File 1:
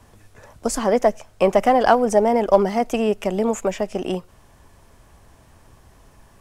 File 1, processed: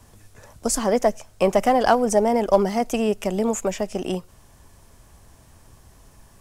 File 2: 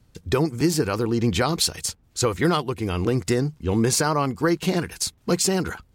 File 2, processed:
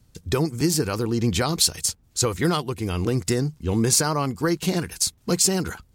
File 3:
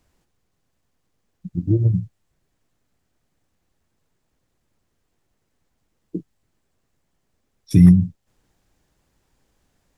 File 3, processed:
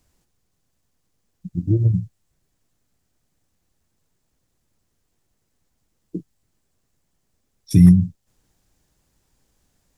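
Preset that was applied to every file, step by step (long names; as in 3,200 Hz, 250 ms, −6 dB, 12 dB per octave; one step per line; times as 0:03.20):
bass and treble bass +3 dB, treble +7 dB
level −2.5 dB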